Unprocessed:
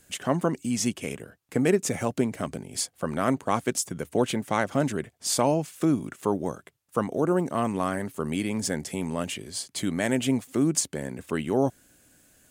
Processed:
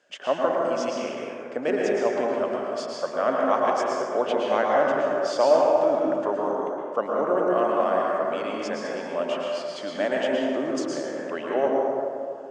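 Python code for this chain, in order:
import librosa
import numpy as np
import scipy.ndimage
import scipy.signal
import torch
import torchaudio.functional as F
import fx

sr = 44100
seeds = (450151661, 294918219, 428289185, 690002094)

y = fx.cabinet(x, sr, low_hz=500.0, low_slope=12, high_hz=4700.0, hz=(590.0, 2200.0, 4000.0), db=(9, -6, -9))
y = fx.rev_plate(y, sr, seeds[0], rt60_s=2.5, hf_ratio=0.4, predelay_ms=100, drr_db=-3.0)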